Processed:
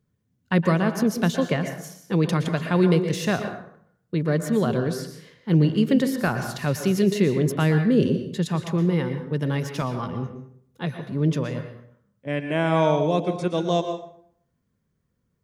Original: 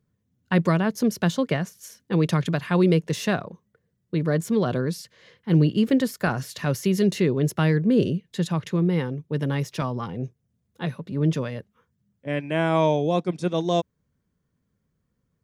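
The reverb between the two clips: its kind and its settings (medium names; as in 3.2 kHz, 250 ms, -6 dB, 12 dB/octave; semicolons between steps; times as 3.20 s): plate-style reverb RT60 0.64 s, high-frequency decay 0.65×, pre-delay 105 ms, DRR 7 dB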